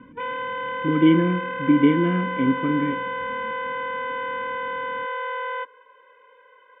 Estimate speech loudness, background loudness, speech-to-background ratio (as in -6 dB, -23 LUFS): -21.5 LUFS, -28.5 LUFS, 7.0 dB